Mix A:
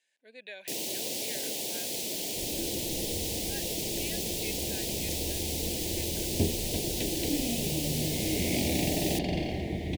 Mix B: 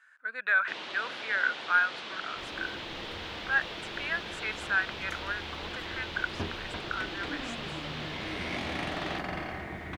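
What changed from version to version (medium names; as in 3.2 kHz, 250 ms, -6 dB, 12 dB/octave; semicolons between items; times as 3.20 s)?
first sound: add four-pole ladder low-pass 4.1 kHz, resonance 45%; second sound -9.0 dB; master: remove Butterworth band-stop 1.3 kHz, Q 0.53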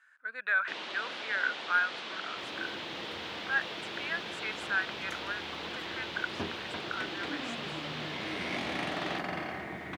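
speech -3.0 dB; master: add high-pass 140 Hz 12 dB/octave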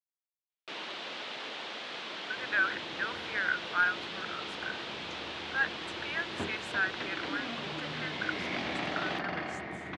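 speech: entry +2.05 s; second sound: add low-pass 5.7 kHz 24 dB/octave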